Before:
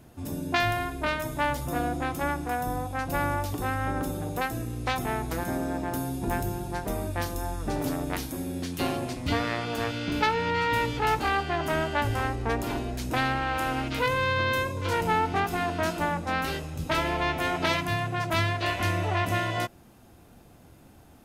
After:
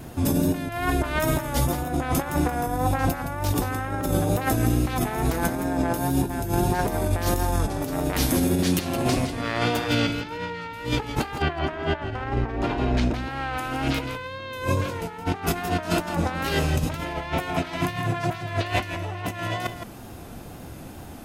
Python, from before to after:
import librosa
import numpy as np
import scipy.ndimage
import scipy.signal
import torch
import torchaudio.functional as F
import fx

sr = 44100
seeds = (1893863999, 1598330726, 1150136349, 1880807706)

y = fx.lowpass(x, sr, hz=3300.0, slope=12, at=(11.42, 13.14))
y = fx.over_compress(y, sr, threshold_db=-33.0, ratio=-0.5)
y = y + 10.0 ** (-9.5 / 20.0) * np.pad(y, (int(165 * sr / 1000.0), 0))[:len(y)]
y = fx.wow_flutter(y, sr, seeds[0], rate_hz=2.1, depth_cents=38.0)
y = y * librosa.db_to_amplitude(8.0)